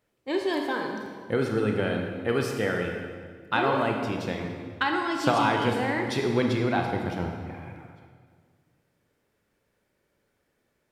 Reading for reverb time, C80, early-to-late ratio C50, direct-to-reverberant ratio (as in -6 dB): 1.8 s, 5.0 dB, 3.5 dB, 2.0 dB